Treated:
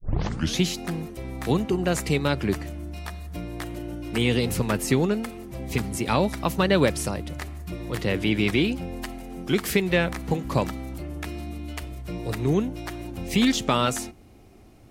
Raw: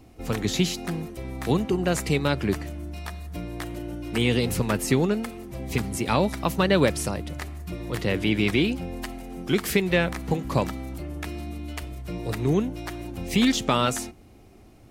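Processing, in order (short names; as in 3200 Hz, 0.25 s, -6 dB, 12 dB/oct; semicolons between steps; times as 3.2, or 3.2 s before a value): tape start at the beginning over 0.58 s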